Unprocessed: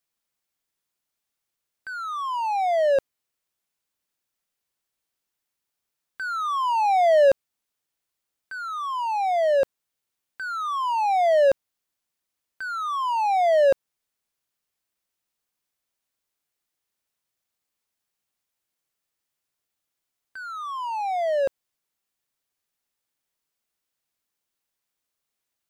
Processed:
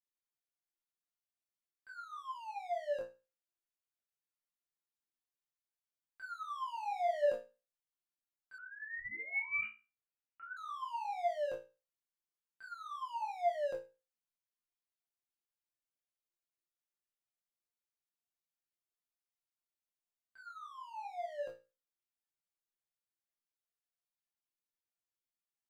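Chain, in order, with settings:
multi-voice chorus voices 2, 0.5 Hz, delay 22 ms, depth 3.6 ms
resonators tuned to a chord A#2 fifth, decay 0.29 s
0:08.58–0:10.57: voice inversion scrambler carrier 2,900 Hz
level −1.5 dB

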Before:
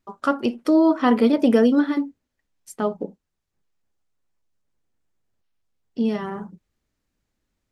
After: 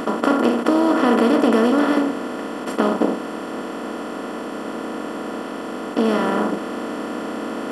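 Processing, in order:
compressor on every frequency bin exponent 0.2
level −4 dB

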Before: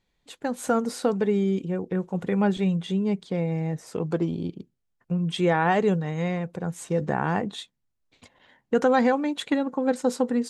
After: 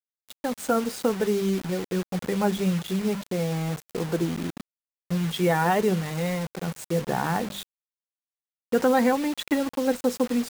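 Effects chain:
spectral magnitudes quantised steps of 15 dB
mains-hum notches 50/100/150/200 Hz
bit reduction 6 bits

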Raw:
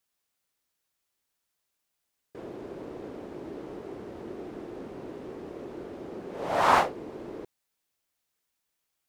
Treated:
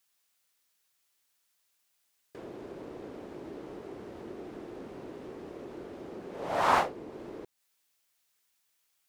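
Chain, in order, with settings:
one half of a high-frequency compander encoder only
level −3.5 dB

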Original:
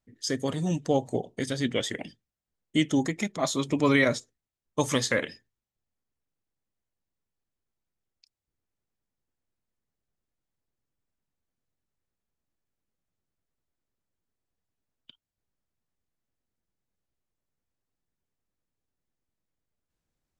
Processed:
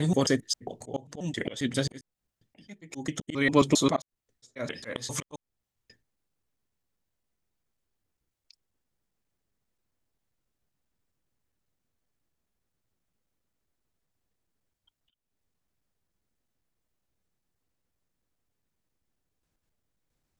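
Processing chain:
slices reordered back to front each 134 ms, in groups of 5
volume swells 330 ms
level +4.5 dB

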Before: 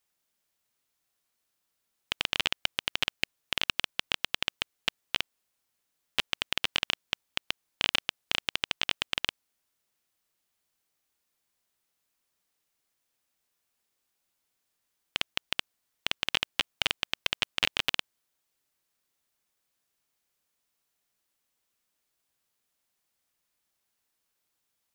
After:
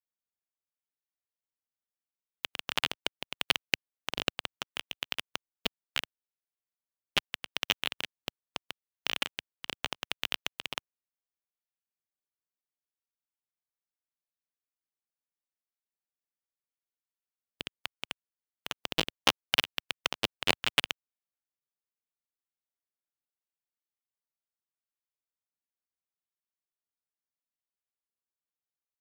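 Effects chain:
high-pass filter 89 Hz 12 dB per octave
high-shelf EQ 12,000 Hz +6 dB
in parallel at −7 dB: sample-and-hold swept by an LFO 9×, swing 100% 0.87 Hz
on the sum: tempo change 0.86×
expander for the loud parts 2.5 to 1, over −41 dBFS
level +3 dB

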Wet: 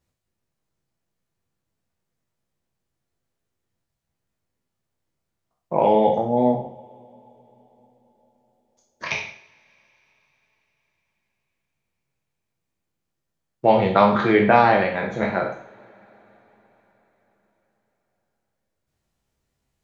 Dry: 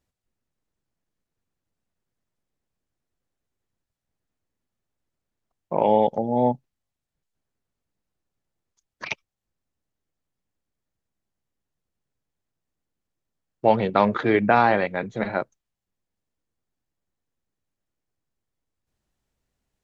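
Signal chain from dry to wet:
peak hold with a decay on every bin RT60 0.43 s
coupled-rooms reverb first 0.49 s, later 4.8 s, from −28 dB, DRR 2.5 dB

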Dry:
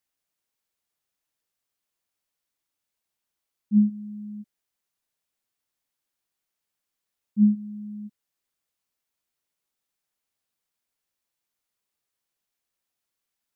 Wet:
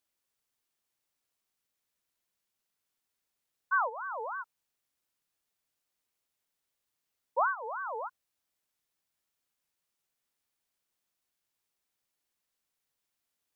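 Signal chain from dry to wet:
downward compressor 6 to 1, threshold −26 dBFS, peak gain reduction 11.5 dB
ring modulator whose carrier an LFO sweeps 1,000 Hz, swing 35%, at 3.2 Hz
level +2.5 dB

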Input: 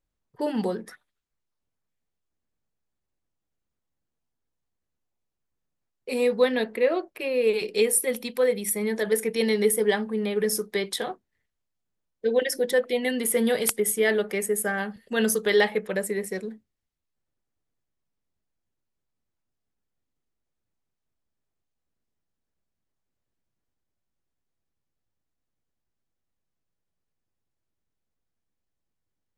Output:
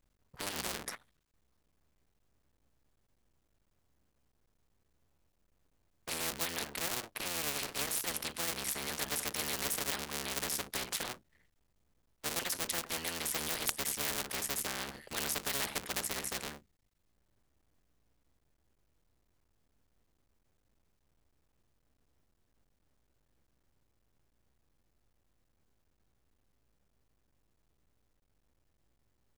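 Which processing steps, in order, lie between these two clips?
sub-harmonics by changed cycles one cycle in 3, muted
every bin compressed towards the loudest bin 4 to 1
level −5 dB

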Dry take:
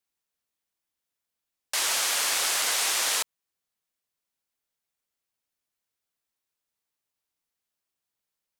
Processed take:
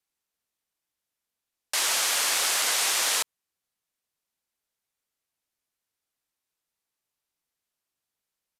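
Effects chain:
downsampling to 32,000 Hz
level +1 dB

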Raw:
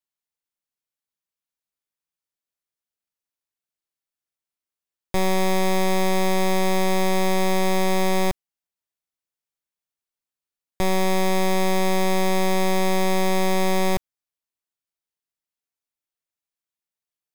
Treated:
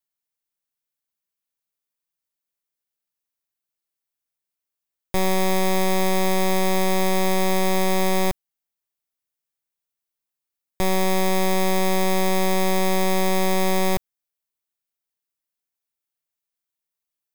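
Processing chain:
high-shelf EQ 12,000 Hz +8.5 dB

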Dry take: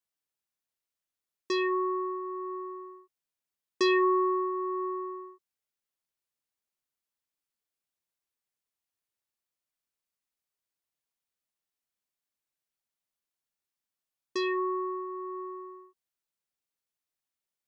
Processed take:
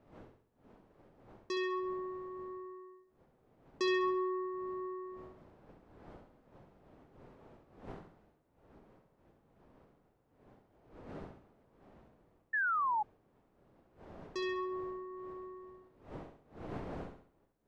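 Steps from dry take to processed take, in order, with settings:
wind on the microphone 540 Hz −48 dBFS
flutter between parallel walls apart 11.5 metres, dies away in 0.55 s
sound drawn into the spectrogram fall, 0:12.53–0:13.03, 820–1,800 Hz −24 dBFS
level −8 dB

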